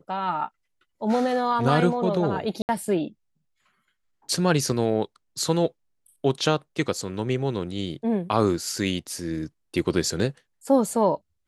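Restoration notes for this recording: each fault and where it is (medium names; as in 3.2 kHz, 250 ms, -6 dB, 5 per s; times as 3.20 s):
2.62–2.69 s: dropout 69 ms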